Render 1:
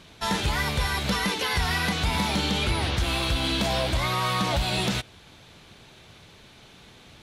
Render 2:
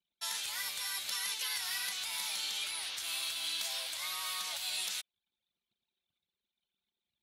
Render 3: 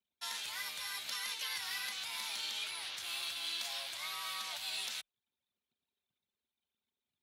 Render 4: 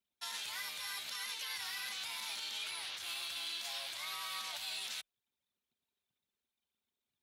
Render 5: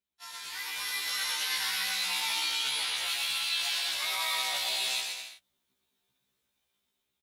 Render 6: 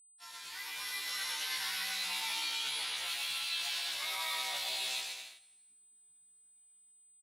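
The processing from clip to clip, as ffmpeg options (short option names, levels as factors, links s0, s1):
-filter_complex "[0:a]anlmdn=0.251,aderivative,acrossover=split=570[s0][s1];[s0]alimiter=level_in=50.1:limit=0.0631:level=0:latency=1:release=491,volume=0.02[s2];[s2][s1]amix=inputs=2:normalize=0,volume=0.841"
-filter_complex "[0:a]asplit=2[s0][s1];[s1]adynamicsmooth=sensitivity=7.5:basefreq=3900,volume=0.891[s2];[s0][s2]amix=inputs=2:normalize=0,afreqshift=25,volume=0.501"
-af "alimiter=level_in=2.37:limit=0.0631:level=0:latency=1:release=31,volume=0.422"
-af "dynaudnorm=f=290:g=5:m=3.55,aecho=1:1:120|210|277.5|328.1|366.1:0.631|0.398|0.251|0.158|0.1,afftfilt=real='re*1.73*eq(mod(b,3),0)':imag='im*1.73*eq(mod(b,3),0)':win_size=2048:overlap=0.75"
-af "aeval=exprs='val(0)+0.00178*sin(2*PI*8100*n/s)':c=same,aecho=1:1:164|328|492:0.0794|0.031|0.0121,volume=0.531"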